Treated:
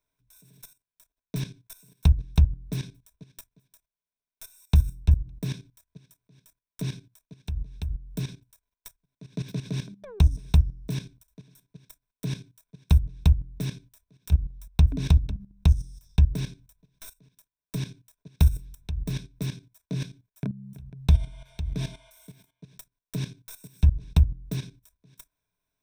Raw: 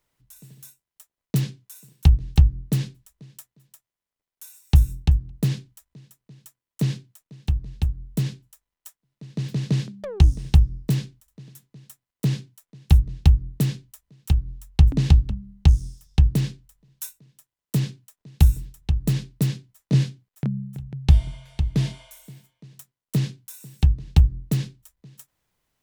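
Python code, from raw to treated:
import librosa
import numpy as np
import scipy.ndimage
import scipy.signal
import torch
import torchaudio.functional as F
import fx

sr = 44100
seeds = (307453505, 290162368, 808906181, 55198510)

y = fx.tracing_dist(x, sr, depth_ms=0.057)
y = fx.ripple_eq(y, sr, per_octave=1.6, db=11)
y = fx.level_steps(y, sr, step_db=14)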